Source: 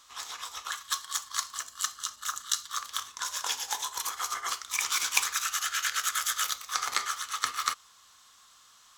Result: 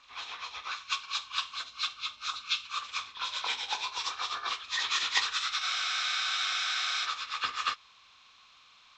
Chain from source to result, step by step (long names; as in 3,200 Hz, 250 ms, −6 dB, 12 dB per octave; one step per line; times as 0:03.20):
hearing-aid frequency compression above 1,200 Hz 1.5 to 1
frozen spectrum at 0:05.64, 1.40 s